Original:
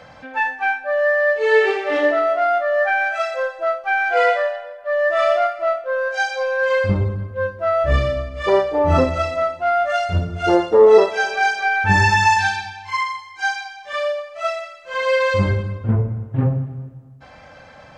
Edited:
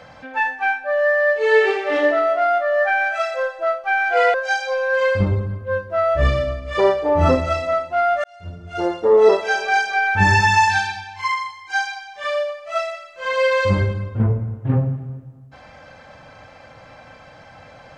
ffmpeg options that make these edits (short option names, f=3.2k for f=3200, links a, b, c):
-filter_complex "[0:a]asplit=3[a][b][c];[a]atrim=end=4.342[d];[b]atrim=start=6.028:end=9.93,asetpts=PTS-STARTPTS,afade=t=out:st=3.898:d=0.004:c=hsin[e];[c]atrim=start=9.93,asetpts=PTS-STARTPTS,afade=t=in:d=1.26[f];[e][f]concat=n=2:v=0:a=1[g];[d][g]acrossfade=d=0.004:c1=hsin:c2=hsin"